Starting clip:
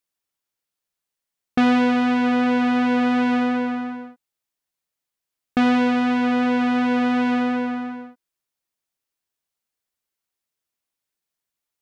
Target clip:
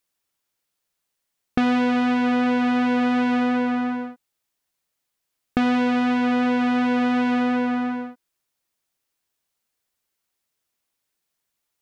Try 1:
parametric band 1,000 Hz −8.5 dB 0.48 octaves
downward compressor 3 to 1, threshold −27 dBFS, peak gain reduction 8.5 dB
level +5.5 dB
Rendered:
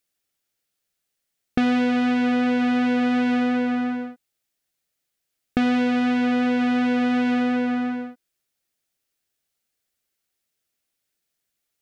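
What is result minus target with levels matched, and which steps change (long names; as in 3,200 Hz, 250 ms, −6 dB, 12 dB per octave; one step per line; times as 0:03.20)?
1,000 Hz band −2.5 dB
remove: parametric band 1,000 Hz −8.5 dB 0.48 octaves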